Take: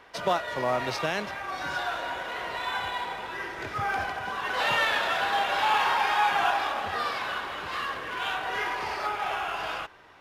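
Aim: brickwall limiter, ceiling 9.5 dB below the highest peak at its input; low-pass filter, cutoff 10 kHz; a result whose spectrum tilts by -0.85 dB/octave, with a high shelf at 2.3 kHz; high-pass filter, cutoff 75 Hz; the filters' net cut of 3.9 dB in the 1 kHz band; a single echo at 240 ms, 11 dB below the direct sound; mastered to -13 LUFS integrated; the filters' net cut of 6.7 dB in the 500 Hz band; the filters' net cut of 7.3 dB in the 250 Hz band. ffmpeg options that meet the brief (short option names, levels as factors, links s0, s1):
-af "highpass=75,lowpass=10000,equalizer=f=250:t=o:g=-8,equalizer=f=500:t=o:g=-6.5,equalizer=f=1000:t=o:g=-4,highshelf=f=2300:g=8,alimiter=limit=0.0891:level=0:latency=1,aecho=1:1:240:0.282,volume=7.08"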